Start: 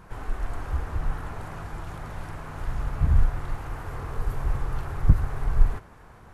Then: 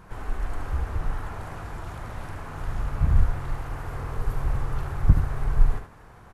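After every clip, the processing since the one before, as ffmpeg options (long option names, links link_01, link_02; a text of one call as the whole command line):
ffmpeg -i in.wav -af "aecho=1:1:74:0.422" out.wav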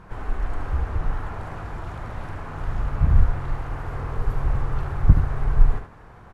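ffmpeg -i in.wav -af "aemphasis=mode=reproduction:type=50kf,volume=3dB" out.wav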